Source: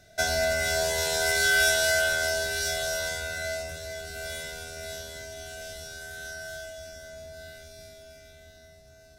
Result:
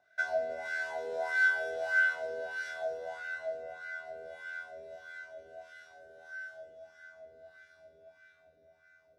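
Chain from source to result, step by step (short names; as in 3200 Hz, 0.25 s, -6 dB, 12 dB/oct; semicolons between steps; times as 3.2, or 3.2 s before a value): dark delay 0.152 s, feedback 82%, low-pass 2400 Hz, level -6 dB; wah 1.6 Hz 460–1600 Hz, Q 4.1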